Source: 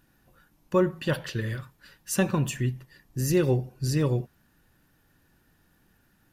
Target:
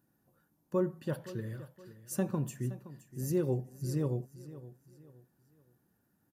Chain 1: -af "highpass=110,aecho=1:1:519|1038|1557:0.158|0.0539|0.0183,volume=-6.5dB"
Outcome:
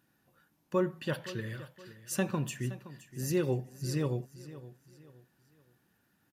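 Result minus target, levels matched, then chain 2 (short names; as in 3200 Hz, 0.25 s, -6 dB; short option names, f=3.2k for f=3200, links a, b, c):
2000 Hz band +8.5 dB
-af "highpass=110,equalizer=f=2.8k:t=o:w=2.2:g=-13.5,aecho=1:1:519|1038|1557:0.158|0.0539|0.0183,volume=-6.5dB"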